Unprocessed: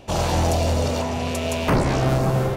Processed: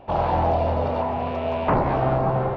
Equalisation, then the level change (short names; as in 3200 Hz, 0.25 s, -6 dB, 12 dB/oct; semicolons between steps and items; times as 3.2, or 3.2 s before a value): Gaussian blur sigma 2.9 samples; bell 850 Hz +10 dB 1.2 oct; -4.5 dB